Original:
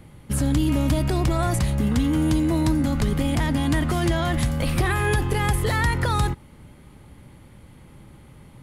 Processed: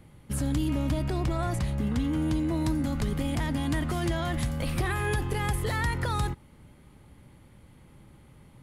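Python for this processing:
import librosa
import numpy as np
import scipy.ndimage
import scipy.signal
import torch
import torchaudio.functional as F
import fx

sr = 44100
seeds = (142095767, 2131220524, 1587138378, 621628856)

y = fx.high_shelf(x, sr, hz=6100.0, db=-7.0, at=(0.68, 2.61))
y = y * librosa.db_to_amplitude(-6.5)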